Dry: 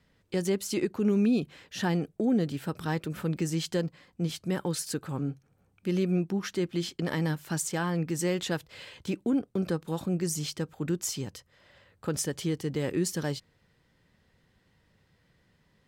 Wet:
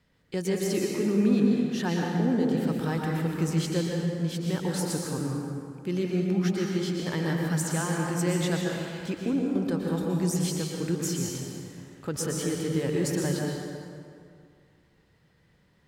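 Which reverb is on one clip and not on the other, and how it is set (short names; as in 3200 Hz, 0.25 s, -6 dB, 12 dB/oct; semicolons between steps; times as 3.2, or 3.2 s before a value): plate-style reverb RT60 2.3 s, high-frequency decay 0.6×, pre-delay 0.105 s, DRR -1.5 dB; gain -1.5 dB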